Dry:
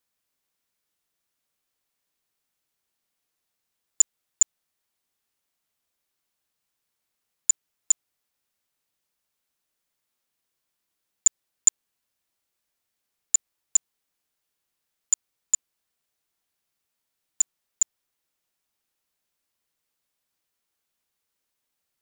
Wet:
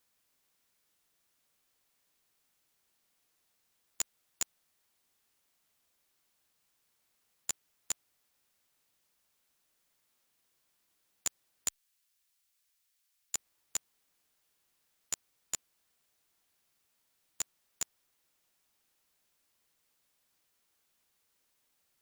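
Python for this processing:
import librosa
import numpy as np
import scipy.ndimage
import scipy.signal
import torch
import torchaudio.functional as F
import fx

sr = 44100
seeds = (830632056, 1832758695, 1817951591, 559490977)

y = fx.tone_stack(x, sr, knobs='10-0-10', at=(11.68, 13.35))
y = fx.spectral_comp(y, sr, ratio=2.0)
y = y * librosa.db_to_amplitude(-5.5)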